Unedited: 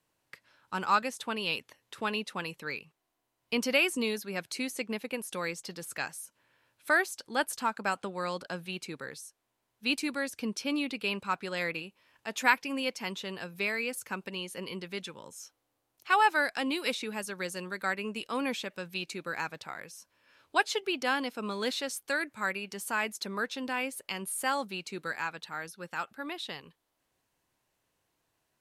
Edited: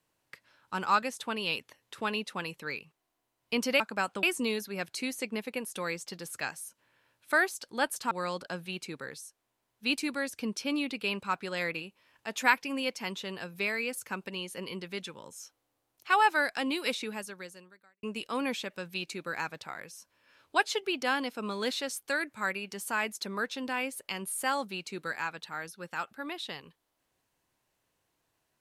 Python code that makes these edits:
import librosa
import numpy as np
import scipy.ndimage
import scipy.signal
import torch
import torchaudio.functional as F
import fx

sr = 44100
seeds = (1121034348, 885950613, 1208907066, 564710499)

y = fx.edit(x, sr, fx.move(start_s=7.68, length_s=0.43, to_s=3.8),
    fx.fade_out_span(start_s=17.07, length_s=0.96, curve='qua'), tone=tone)